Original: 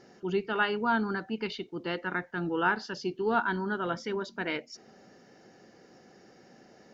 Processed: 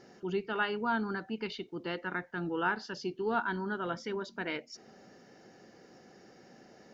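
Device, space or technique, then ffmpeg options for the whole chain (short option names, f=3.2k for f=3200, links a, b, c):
parallel compression: -filter_complex "[0:a]asplit=2[a][b];[b]acompressor=threshold=-41dB:ratio=6,volume=-3dB[c];[a][c]amix=inputs=2:normalize=0,volume=-5dB"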